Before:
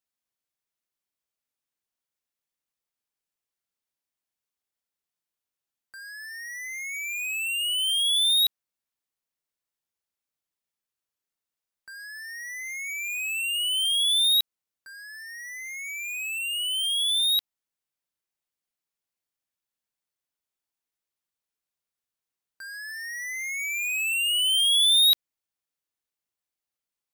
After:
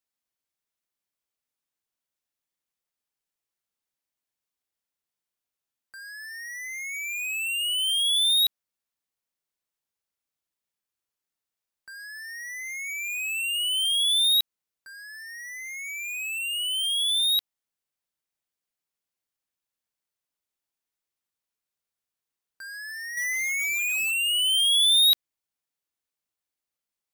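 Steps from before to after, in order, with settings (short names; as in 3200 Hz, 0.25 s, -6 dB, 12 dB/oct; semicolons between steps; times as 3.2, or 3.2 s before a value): 23.17–24.11 sample leveller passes 3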